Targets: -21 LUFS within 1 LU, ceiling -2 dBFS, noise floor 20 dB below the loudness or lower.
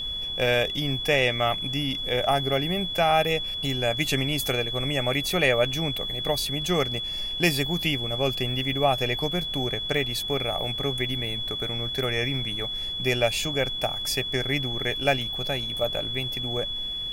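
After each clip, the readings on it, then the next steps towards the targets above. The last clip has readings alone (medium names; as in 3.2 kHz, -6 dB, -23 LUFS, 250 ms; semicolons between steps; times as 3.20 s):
steady tone 3.4 kHz; tone level -29 dBFS; noise floor -32 dBFS; noise floor target -45 dBFS; loudness -25.0 LUFS; peak level -7.0 dBFS; loudness target -21.0 LUFS
-> band-stop 3.4 kHz, Q 30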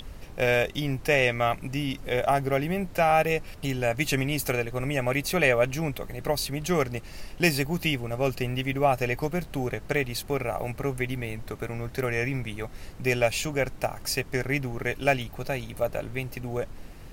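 steady tone not found; noise floor -43 dBFS; noise floor target -48 dBFS
-> noise print and reduce 6 dB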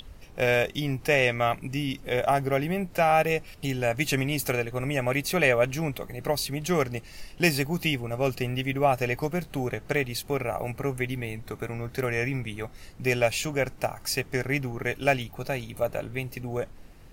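noise floor -48 dBFS; loudness -27.5 LUFS; peak level -7.5 dBFS; loudness target -21.0 LUFS
-> trim +6.5 dB; peak limiter -2 dBFS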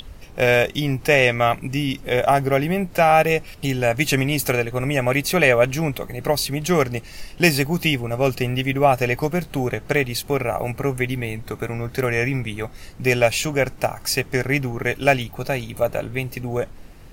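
loudness -21.0 LUFS; peak level -2.0 dBFS; noise floor -41 dBFS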